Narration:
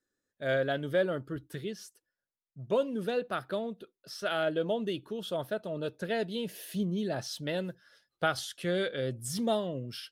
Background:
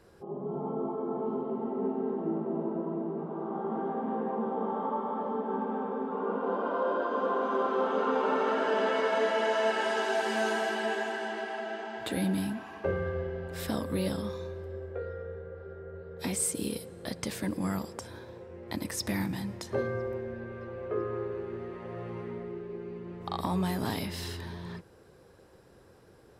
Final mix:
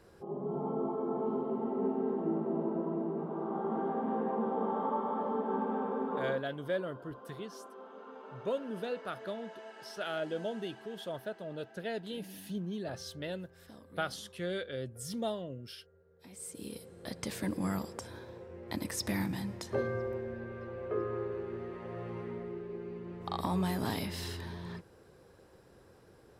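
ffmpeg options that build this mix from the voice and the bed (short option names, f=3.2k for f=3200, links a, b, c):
-filter_complex "[0:a]adelay=5750,volume=-6dB[a];[1:a]volume=18.5dB,afade=t=out:st=6.16:d=0.28:silence=0.0944061,afade=t=in:st=16.29:d=1.17:silence=0.105925[b];[a][b]amix=inputs=2:normalize=0"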